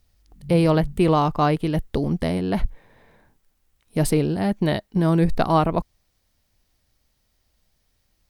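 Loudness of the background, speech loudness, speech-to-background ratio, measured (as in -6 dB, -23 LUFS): -40.5 LUFS, -21.5 LUFS, 19.0 dB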